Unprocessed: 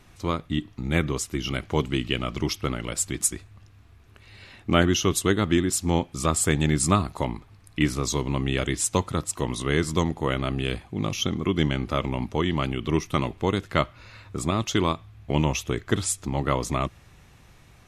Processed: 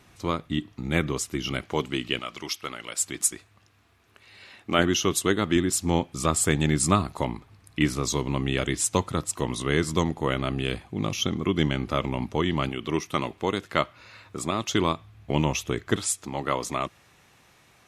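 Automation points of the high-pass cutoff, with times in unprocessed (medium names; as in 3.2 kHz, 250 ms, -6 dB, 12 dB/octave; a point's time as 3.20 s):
high-pass 6 dB/octave
110 Hz
from 1.62 s 290 Hz
from 2.19 s 1.1 kHz
from 3.01 s 420 Hz
from 4.79 s 180 Hz
from 5.56 s 77 Hz
from 12.69 s 280 Hz
from 14.68 s 100 Hz
from 15.96 s 380 Hz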